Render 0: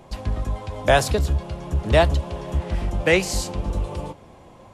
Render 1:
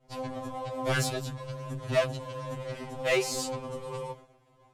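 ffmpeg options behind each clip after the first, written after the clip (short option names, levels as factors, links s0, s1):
-af "agate=range=0.0224:threshold=0.0126:ratio=3:detection=peak,asoftclip=type=tanh:threshold=0.133,afftfilt=real='re*2.45*eq(mod(b,6),0)':imag='im*2.45*eq(mod(b,6),0)':win_size=2048:overlap=0.75,volume=0.841"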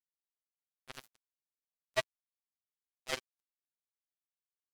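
-filter_complex "[0:a]highpass=f=340:p=1,asplit=2[s0][s1];[s1]acompressor=threshold=0.00891:ratio=16,volume=1.12[s2];[s0][s2]amix=inputs=2:normalize=0,acrusher=bits=2:mix=0:aa=0.5,volume=0.668"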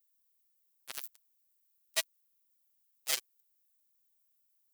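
-filter_complex "[0:a]aemphasis=mode=production:type=riaa,acrossover=split=2300[s0][s1];[s0]alimiter=level_in=1.68:limit=0.0631:level=0:latency=1,volume=0.596[s2];[s2][s1]amix=inputs=2:normalize=0"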